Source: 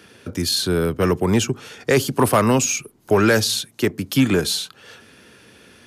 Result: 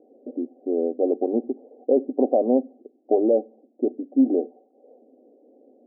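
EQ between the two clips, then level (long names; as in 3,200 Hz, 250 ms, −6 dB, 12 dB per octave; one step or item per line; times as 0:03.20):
linear-phase brick-wall high-pass 240 Hz
Chebyshev low-pass with heavy ripple 780 Hz, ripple 6 dB
high-frequency loss of the air 440 metres
+4.0 dB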